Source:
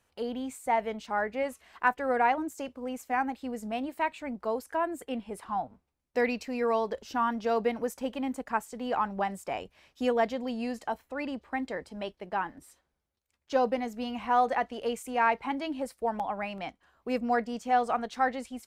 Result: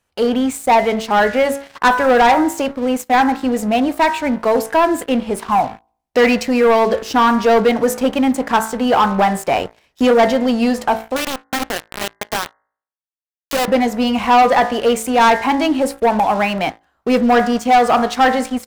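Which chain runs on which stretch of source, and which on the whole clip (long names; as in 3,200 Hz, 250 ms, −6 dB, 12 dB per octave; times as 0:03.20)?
0:11.16–0:13.68: high-pass filter 46 Hz 6 dB per octave + downward compressor 3 to 1, threshold −39 dBFS + bit-depth reduction 6 bits, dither none
whole clip: hum removal 55.55 Hz, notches 38; leveller curve on the samples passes 3; level +7.5 dB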